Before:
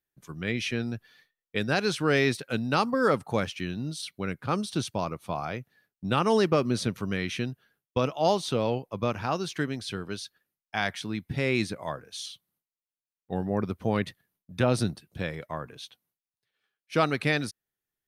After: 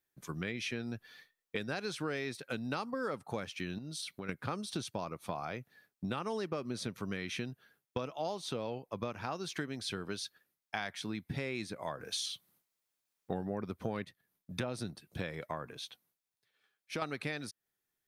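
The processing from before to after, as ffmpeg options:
-filter_complex "[0:a]asettb=1/sr,asplit=3[a][b][c];[a]atrim=end=3.784[d];[b]atrim=start=3.78:end=4.29,asetpts=PTS-STARTPTS,afade=t=in:d=0.004:c=qsin,afade=t=out:st=0.506:d=0.004:c=qsin,acompressor=threshold=-40dB:ratio=6:attack=3.2:release=140:knee=1:detection=peak[e];[c]atrim=start=4.286[f];[d][e]acrossfade=d=0.004:c1=hsin:c2=qsin[g];[g][f]acrossfade=d=0.004:c1=qsin:c2=hsin,asettb=1/sr,asplit=3[h][i][j];[h]atrim=end=12.004[k];[i]atrim=start=12:end=14.05,asetpts=PTS-STARTPTS,afade=t=in:d=0.004:c=qsin,afade=t=out:st=2.046:d=0.004:c=qsin,acontrast=75[l];[j]atrim=start=14.046[m];[k][l]acrossfade=d=0.004:c1=hsin:c2=qsin[n];[n][m]acrossfade=d=0.004:c1=qsin:c2=hsin,asettb=1/sr,asplit=3[o][p][q];[o]atrim=end=15.724[r];[p]atrim=start=15.72:end=17.02,asetpts=PTS-STARTPTS,afade=t=in:d=0.004:c=qsin,afade=t=out:st=1.296:d=0.004:c=qsin,acompressor=threshold=-49dB:ratio=1.5:attack=3.2:release=140:knee=1:detection=peak[s];[q]atrim=start=17.016[t];[r][s]acrossfade=d=0.004:c1=hsin:c2=qsin[u];[u][t]acrossfade=d=0.004:c1=qsin:c2=hsin,lowshelf=f=130:g=-6.5,bandreject=f=2.9k:w=22,acompressor=threshold=-38dB:ratio=6,volume=3dB"

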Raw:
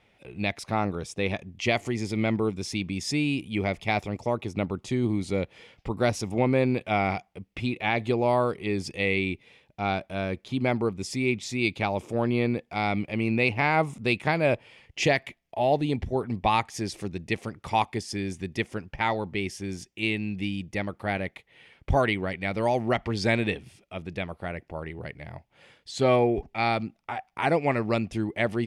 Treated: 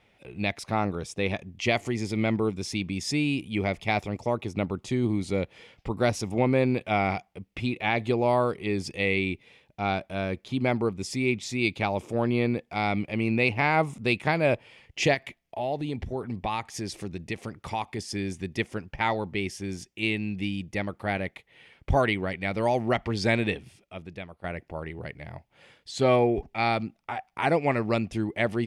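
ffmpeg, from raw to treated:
-filter_complex "[0:a]asettb=1/sr,asplit=3[a][b][c];[a]atrim=end=15.144[d];[b]atrim=start=15.14:end=17.99,asetpts=PTS-STARTPTS,afade=t=in:d=0.004:c=qsin,afade=t=out:st=2.846:d=0.004:c=qsin,acompressor=threshold=-30dB:ratio=2:attack=3.2:release=140:knee=1:detection=peak[e];[c]atrim=start=17.986[f];[d][e]acrossfade=d=0.004:c1=hsin:c2=qsin[g];[g][f]acrossfade=d=0.004:c1=qsin:c2=hsin,asplit=2[h][i];[h]atrim=end=24.44,asetpts=PTS-STARTPTS,afade=t=out:st=23.56:d=0.88:silence=0.251189[j];[i]atrim=start=24.44,asetpts=PTS-STARTPTS,afade=t=in:d=0.004:c=hsin:silence=0.251189[k];[j][k]concat=n=2:v=0:a=1"

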